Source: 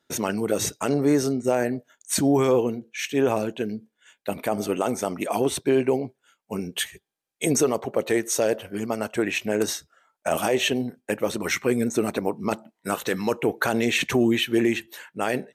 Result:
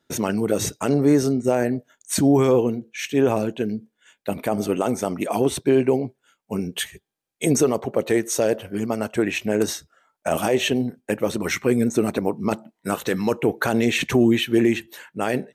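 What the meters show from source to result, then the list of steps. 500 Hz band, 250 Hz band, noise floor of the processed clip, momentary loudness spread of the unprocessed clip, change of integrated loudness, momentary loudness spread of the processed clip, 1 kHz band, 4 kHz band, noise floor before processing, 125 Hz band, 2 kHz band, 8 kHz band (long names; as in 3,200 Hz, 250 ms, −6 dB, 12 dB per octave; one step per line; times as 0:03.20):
+2.5 dB, +4.0 dB, −78 dBFS, 10 LU, +2.5 dB, 10 LU, +1.0 dB, 0.0 dB, −81 dBFS, +5.0 dB, 0.0 dB, 0.0 dB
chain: low-shelf EQ 360 Hz +6 dB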